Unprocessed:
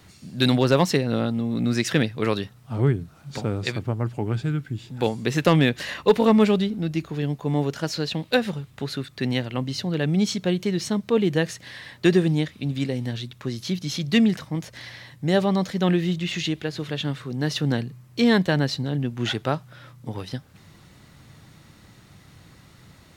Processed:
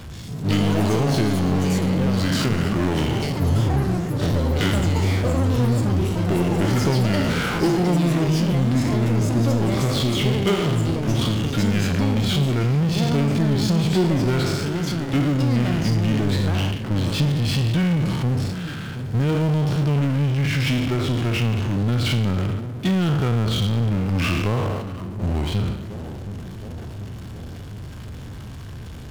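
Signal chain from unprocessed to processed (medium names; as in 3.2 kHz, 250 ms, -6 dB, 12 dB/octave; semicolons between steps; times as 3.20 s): spectral sustain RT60 0.72 s; gate -34 dBFS, range -10 dB; bass shelf 370 Hz +10.5 dB; compression, threshold -16 dBFS, peak gain reduction 10.5 dB; bucket-brigade echo 573 ms, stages 4096, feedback 54%, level -21 dB; wide varispeed 0.796×; power-law waveshaper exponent 0.5; ever faster or slower copies 150 ms, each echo +7 st, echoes 3, each echo -6 dB; trim -6.5 dB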